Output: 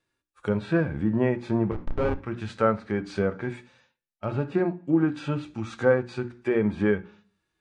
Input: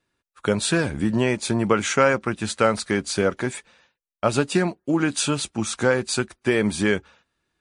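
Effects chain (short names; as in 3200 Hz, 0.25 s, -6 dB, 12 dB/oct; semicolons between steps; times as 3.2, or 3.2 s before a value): 1.71–2.22 Schmitt trigger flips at -15 dBFS; treble ducked by the level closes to 1600 Hz, closed at -19 dBFS; notches 60/120/180/240/300/360 Hz; on a send at -13 dB: reverb RT60 0.45 s, pre-delay 3 ms; on the sum: harmonic-percussive split percussive -13 dB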